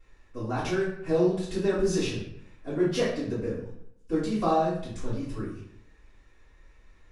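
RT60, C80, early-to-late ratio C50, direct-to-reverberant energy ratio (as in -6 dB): 0.70 s, 6.5 dB, 3.0 dB, -11.5 dB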